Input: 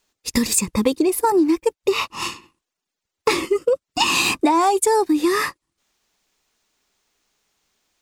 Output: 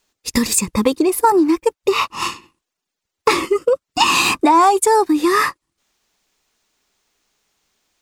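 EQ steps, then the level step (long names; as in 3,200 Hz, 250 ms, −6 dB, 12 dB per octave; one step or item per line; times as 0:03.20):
dynamic equaliser 1,200 Hz, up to +6 dB, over −34 dBFS, Q 1.4
+2.0 dB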